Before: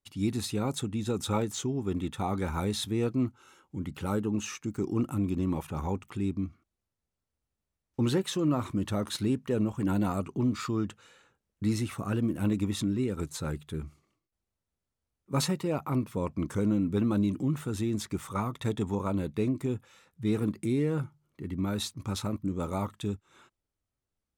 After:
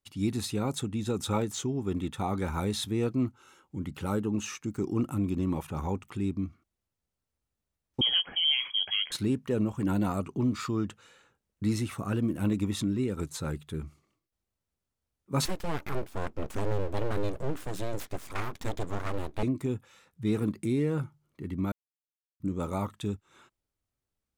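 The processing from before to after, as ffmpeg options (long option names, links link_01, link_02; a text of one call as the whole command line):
ffmpeg -i in.wav -filter_complex "[0:a]asettb=1/sr,asplit=3[link_01][link_02][link_03];[link_01]atrim=end=8.014[link_04];[link_02]atrim=start=8.01:end=9.12,asetpts=PTS-STARTPTS,afade=type=in:duration=0.004:curve=qsin,afade=type=out:start_time=1.106:duration=0.004:curve=qsin,lowpass=frequency=2900:width_type=q:width=0.5098,lowpass=frequency=2900:width_type=q:width=0.6013,lowpass=frequency=2900:width_type=q:width=0.9,lowpass=frequency=2900:width_type=q:width=2.563,afreqshift=-3400[link_05];[link_03]atrim=start=9.116[link_06];[link_04][link_05]acrossfade=duration=0.004:curve1=hsin:curve2=qsin[link_07];[link_07][link_06]acrossfade=duration=0.004:curve1=qsin:curve2=hsin,asettb=1/sr,asplit=3[link_08][link_09][link_10];[link_08]atrim=end=15.454[link_11];[link_09]atrim=start=15.45:end=19.43,asetpts=PTS-STARTPTS,afade=type=in:duration=0.004:curve=qsin,afade=type=out:start_time=3.976:duration=0.004:curve=qsin,aeval=exprs='abs(val(0))':channel_layout=same[link_12];[link_10]atrim=start=19.426[link_13];[link_11][link_12]acrossfade=duration=0.004:curve1=hsin:curve2=qsin[link_14];[link_14][link_13]acrossfade=duration=0.004:curve1=qsin:curve2=hsin,asplit=3[link_15][link_16][link_17];[link_15]atrim=end=21.72,asetpts=PTS-STARTPTS,afade=type=out:start_time=21.716:duration=0.004:curve=hsin[link_18];[link_16]atrim=start=21.72:end=22.4,asetpts=PTS-STARTPTS,volume=0[link_19];[link_17]atrim=start=22.4,asetpts=PTS-STARTPTS,afade=type=in:duration=0.004:curve=hsin[link_20];[link_18][link_19][link_20]concat=n=3:v=0:a=1" out.wav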